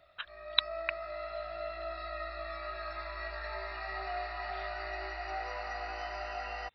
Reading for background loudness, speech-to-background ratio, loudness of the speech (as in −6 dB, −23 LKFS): −39.5 LKFS, 5.5 dB, −34.0 LKFS